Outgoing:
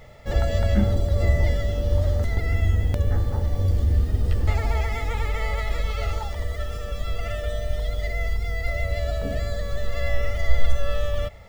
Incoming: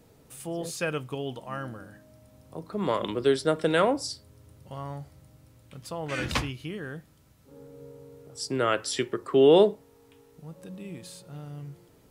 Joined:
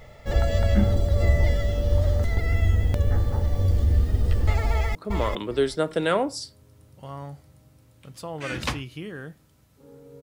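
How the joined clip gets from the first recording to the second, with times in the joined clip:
outgoing
0:04.70–0:04.95: delay throw 400 ms, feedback 15%, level −4 dB
0:04.95: continue with incoming from 0:02.63

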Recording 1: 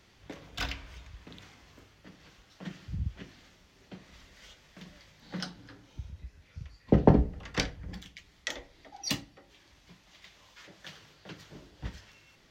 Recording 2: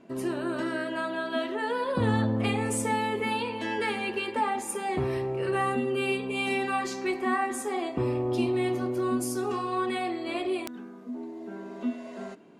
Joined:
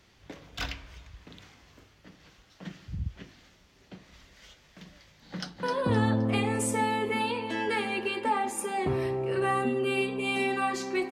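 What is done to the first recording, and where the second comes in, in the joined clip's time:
recording 1
0:05.30–0:05.63: delay throw 260 ms, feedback 35%, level −4.5 dB
0:05.63: continue with recording 2 from 0:01.74

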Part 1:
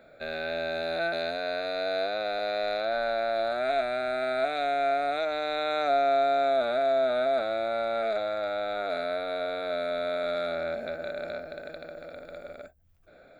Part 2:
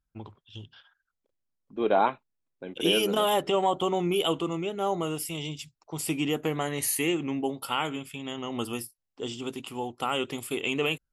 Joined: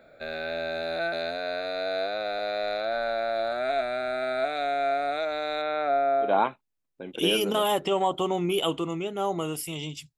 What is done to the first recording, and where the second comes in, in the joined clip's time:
part 1
0:05.61–0:06.34: low-pass filter 3,300 Hz → 1,300 Hz
0:06.27: continue with part 2 from 0:01.89, crossfade 0.14 s

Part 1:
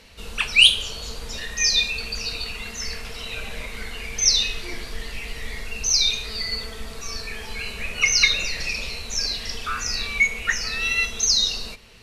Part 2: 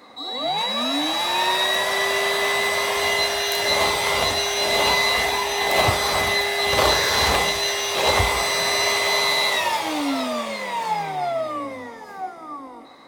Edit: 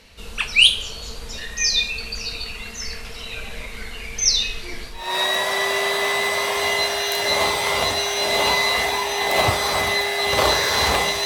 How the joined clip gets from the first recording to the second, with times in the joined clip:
part 1
0:05.02: continue with part 2 from 0:01.42, crossfade 0.32 s quadratic

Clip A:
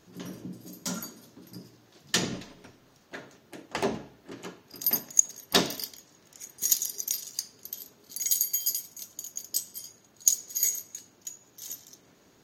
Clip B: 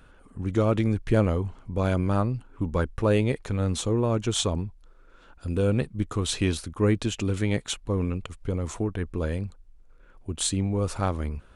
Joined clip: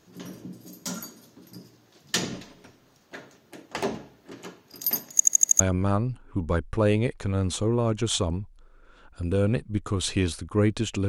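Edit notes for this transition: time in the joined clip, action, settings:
clip A
0:05.12: stutter in place 0.08 s, 6 plays
0:05.60: continue with clip B from 0:01.85

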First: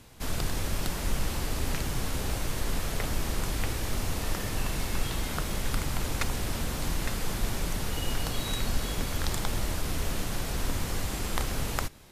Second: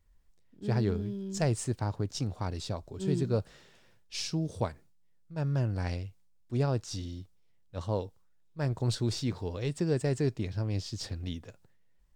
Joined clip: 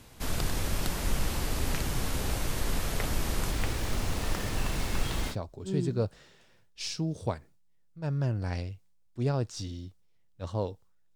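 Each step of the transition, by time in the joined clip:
first
0:03.51–0:05.36: running median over 3 samples
0:05.32: continue with second from 0:02.66, crossfade 0.08 s

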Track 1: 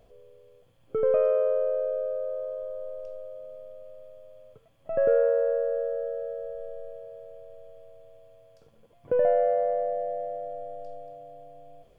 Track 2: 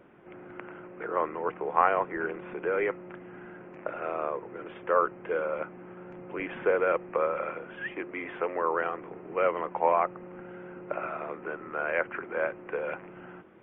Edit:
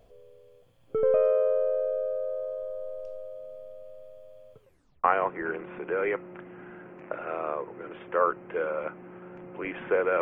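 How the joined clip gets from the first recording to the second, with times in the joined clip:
track 1
0:04.59: tape stop 0.45 s
0:05.04: continue with track 2 from 0:01.79

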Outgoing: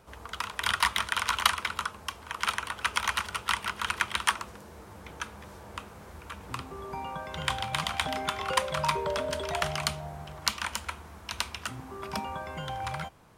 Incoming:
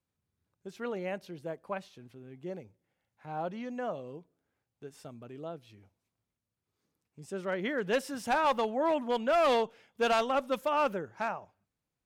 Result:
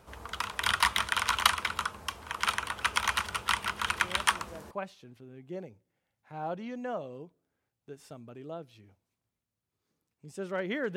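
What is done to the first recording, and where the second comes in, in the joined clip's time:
outgoing
0:04.04: mix in incoming from 0:00.98 0.67 s −8.5 dB
0:04.71: continue with incoming from 0:01.65

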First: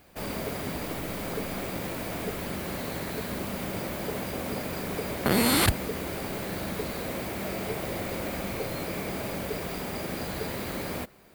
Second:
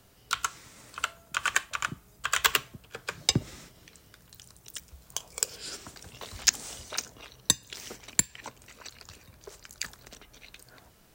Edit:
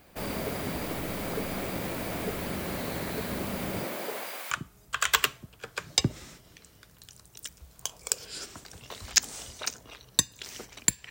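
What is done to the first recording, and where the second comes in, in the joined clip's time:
first
0:03.84–0:04.51: high-pass filter 210 Hz → 1,400 Hz
0:04.51: continue with second from 0:01.82

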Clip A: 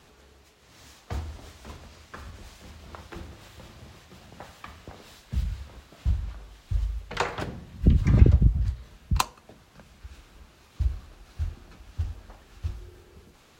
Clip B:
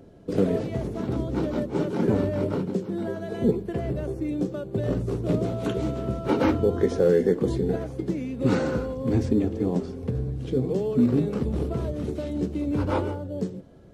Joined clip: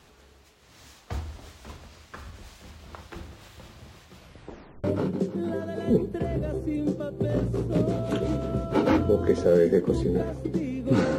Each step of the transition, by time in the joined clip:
clip A
0:04.15: tape stop 0.69 s
0:04.84: continue with clip B from 0:02.38

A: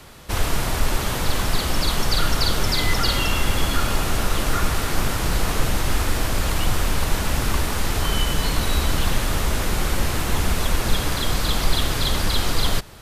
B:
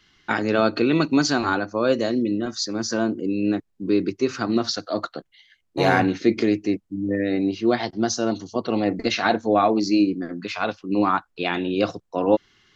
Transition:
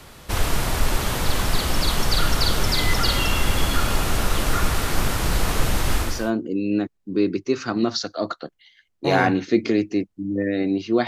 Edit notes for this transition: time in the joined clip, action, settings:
A
0:06.13: continue with B from 0:02.86, crossfade 0.38 s linear

